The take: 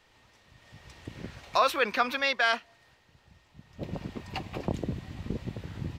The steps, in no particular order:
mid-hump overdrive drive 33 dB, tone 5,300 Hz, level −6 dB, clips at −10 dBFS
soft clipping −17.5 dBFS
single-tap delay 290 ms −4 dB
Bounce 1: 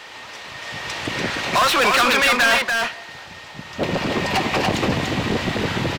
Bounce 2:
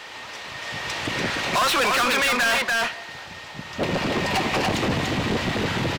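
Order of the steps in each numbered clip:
soft clipping, then mid-hump overdrive, then single-tap delay
mid-hump overdrive, then single-tap delay, then soft clipping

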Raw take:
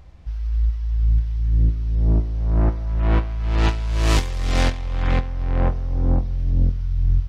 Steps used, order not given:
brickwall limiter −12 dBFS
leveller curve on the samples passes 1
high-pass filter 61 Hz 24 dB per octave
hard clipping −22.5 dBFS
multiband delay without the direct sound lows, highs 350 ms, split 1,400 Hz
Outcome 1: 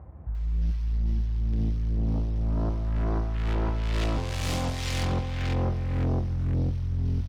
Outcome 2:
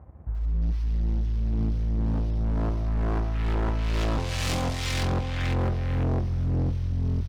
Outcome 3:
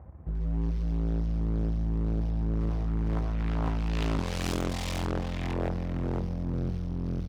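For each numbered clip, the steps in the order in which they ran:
brickwall limiter, then high-pass filter, then hard clipping, then leveller curve on the samples, then multiband delay without the direct sound
brickwall limiter, then high-pass filter, then leveller curve on the samples, then multiband delay without the direct sound, then hard clipping
leveller curve on the samples, then brickwall limiter, then multiband delay without the direct sound, then hard clipping, then high-pass filter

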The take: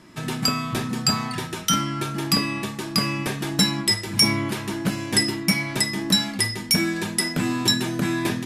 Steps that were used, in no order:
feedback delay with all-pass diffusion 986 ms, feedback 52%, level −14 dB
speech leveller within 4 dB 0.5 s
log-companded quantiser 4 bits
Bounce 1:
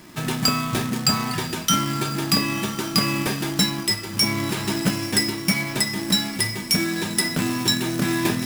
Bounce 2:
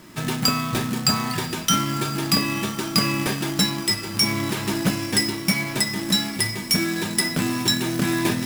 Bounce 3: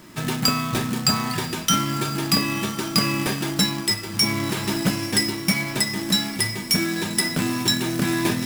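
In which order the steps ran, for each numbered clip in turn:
feedback delay with all-pass diffusion, then log-companded quantiser, then speech leveller
speech leveller, then feedback delay with all-pass diffusion, then log-companded quantiser
feedback delay with all-pass diffusion, then speech leveller, then log-companded quantiser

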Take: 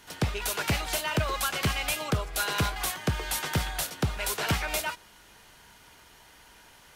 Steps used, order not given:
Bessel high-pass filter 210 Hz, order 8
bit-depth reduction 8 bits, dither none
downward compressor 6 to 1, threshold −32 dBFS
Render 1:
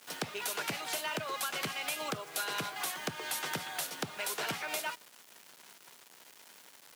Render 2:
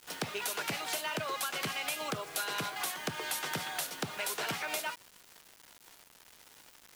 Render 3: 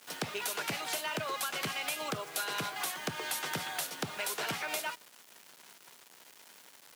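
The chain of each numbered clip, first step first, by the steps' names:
bit-depth reduction, then downward compressor, then Bessel high-pass filter
Bessel high-pass filter, then bit-depth reduction, then downward compressor
bit-depth reduction, then Bessel high-pass filter, then downward compressor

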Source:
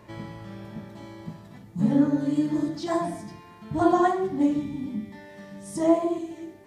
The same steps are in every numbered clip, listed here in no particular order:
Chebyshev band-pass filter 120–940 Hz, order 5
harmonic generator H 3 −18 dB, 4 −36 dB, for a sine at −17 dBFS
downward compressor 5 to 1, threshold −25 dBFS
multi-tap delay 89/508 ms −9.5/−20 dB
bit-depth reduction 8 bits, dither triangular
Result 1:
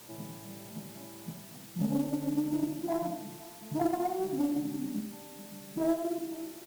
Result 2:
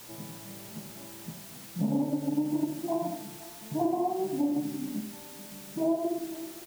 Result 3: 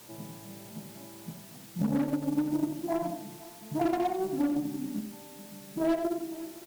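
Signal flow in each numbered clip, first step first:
Chebyshev band-pass filter, then downward compressor, then bit-depth reduction, then harmonic generator, then multi-tap delay
harmonic generator, then Chebyshev band-pass filter, then bit-depth reduction, then downward compressor, then multi-tap delay
Chebyshev band-pass filter, then bit-depth reduction, then harmonic generator, then downward compressor, then multi-tap delay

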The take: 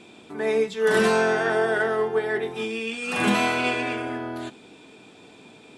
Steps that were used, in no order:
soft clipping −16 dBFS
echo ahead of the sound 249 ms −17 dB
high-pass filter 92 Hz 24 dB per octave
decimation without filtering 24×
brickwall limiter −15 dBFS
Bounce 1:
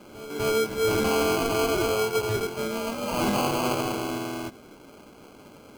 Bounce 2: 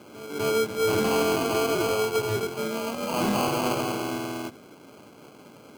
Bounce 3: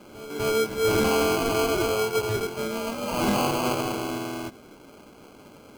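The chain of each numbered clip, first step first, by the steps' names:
high-pass filter, then decimation without filtering, then echo ahead of the sound, then brickwall limiter, then soft clipping
echo ahead of the sound, then decimation without filtering, then brickwall limiter, then high-pass filter, then soft clipping
high-pass filter, then decimation without filtering, then echo ahead of the sound, then soft clipping, then brickwall limiter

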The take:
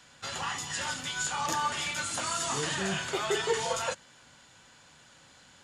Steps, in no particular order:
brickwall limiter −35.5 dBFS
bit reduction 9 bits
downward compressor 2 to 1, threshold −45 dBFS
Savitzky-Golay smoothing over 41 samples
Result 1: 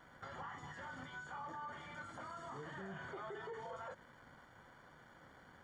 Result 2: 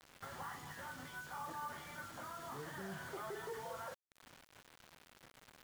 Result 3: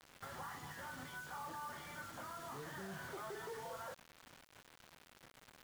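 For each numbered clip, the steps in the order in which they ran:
bit reduction, then brickwall limiter, then Savitzky-Golay smoothing, then downward compressor
downward compressor, then brickwall limiter, then Savitzky-Golay smoothing, then bit reduction
brickwall limiter, then Savitzky-Golay smoothing, then downward compressor, then bit reduction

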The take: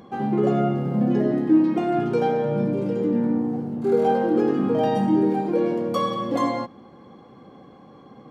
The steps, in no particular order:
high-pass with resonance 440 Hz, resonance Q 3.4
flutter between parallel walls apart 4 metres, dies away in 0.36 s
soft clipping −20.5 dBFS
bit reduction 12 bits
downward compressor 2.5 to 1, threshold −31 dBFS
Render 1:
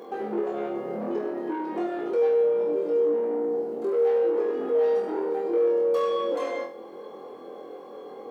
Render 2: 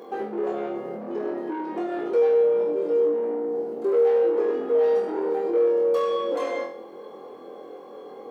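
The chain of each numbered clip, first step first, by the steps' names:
soft clipping, then high-pass with resonance, then downward compressor, then flutter between parallel walls, then bit reduction
soft clipping, then flutter between parallel walls, then bit reduction, then downward compressor, then high-pass with resonance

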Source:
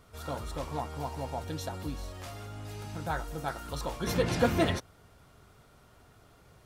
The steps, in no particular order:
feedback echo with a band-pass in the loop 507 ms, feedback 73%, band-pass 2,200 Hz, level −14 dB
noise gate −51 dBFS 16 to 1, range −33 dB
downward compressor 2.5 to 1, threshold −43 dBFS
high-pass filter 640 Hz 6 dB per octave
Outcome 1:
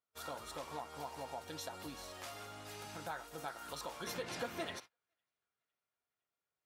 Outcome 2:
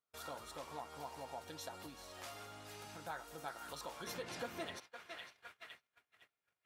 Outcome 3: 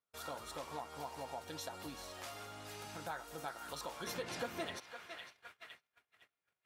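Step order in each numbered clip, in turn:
high-pass filter, then downward compressor, then feedback echo with a band-pass in the loop, then noise gate
feedback echo with a band-pass in the loop, then downward compressor, then noise gate, then high-pass filter
feedback echo with a band-pass in the loop, then noise gate, then high-pass filter, then downward compressor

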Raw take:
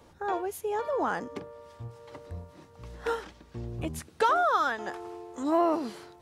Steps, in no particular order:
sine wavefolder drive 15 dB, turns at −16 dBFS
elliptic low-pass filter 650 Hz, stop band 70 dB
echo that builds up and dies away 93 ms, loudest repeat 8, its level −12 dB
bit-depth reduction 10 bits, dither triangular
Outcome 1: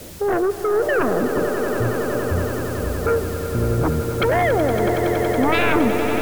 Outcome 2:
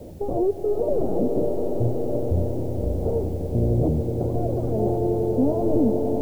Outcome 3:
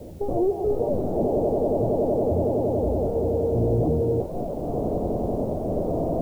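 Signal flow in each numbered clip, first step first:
elliptic low-pass filter, then bit-depth reduction, then sine wavefolder, then echo that builds up and dies away
sine wavefolder, then elliptic low-pass filter, then bit-depth reduction, then echo that builds up and dies away
echo that builds up and dies away, then sine wavefolder, then elliptic low-pass filter, then bit-depth reduction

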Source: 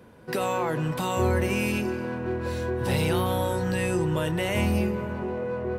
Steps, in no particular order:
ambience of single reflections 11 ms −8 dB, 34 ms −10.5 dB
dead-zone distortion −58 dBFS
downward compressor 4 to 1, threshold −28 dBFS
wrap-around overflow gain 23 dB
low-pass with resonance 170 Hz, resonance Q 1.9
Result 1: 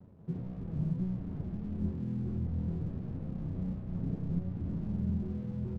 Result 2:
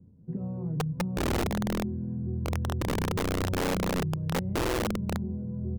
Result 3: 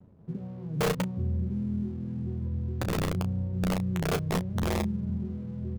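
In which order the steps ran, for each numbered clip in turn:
wrap-around overflow, then downward compressor, then low-pass with resonance, then dead-zone distortion, then ambience of single reflections
dead-zone distortion, then low-pass with resonance, then downward compressor, then ambience of single reflections, then wrap-around overflow
downward compressor, then low-pass with resonance, then dead-zone distortion, then wrap-around overflow, then ambience of single reflections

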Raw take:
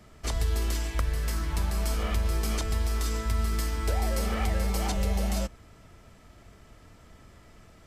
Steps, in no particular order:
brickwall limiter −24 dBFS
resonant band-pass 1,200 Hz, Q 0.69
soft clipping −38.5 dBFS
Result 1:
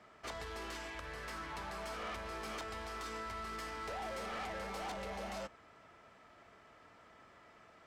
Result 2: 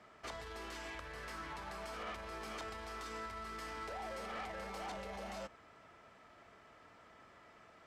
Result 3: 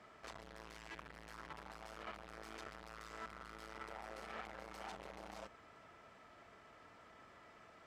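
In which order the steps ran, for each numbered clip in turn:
resonant band-pass, then brickwall limiter, then soft clipping
brickwall limiter, then resonant band-pass, then soft clipping
brickwall limiter, then soft clipping, then resonant band-pass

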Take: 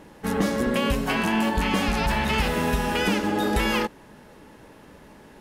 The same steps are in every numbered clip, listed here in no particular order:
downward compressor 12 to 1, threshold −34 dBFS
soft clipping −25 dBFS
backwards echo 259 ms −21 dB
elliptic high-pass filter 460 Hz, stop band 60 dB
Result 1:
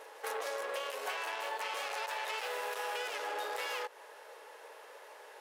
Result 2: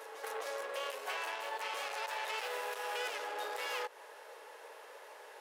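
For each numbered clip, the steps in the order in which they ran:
soft clipping, then elliptic high-pass filter, then downward compressor, then backwards echo
backwards echo, then soft clipping, then downward compressor, then elliptic high-pass filter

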